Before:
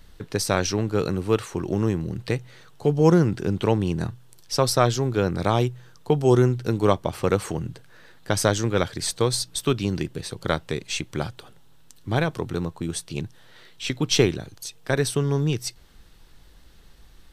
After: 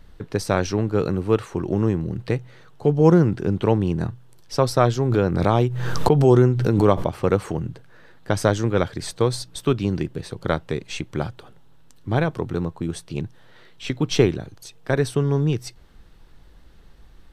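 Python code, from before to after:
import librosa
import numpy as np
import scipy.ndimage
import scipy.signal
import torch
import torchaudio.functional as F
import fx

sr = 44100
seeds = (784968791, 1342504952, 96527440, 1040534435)

y = fx.high_shelf(x, sr, hz=2700.0, db=-10.5)
y = fx.pre_swell(y, sr, db_per_s=37.0, at=(5.0, 7.2))
y = F.gain(torch.from_numpy(y), 2.5).numpy()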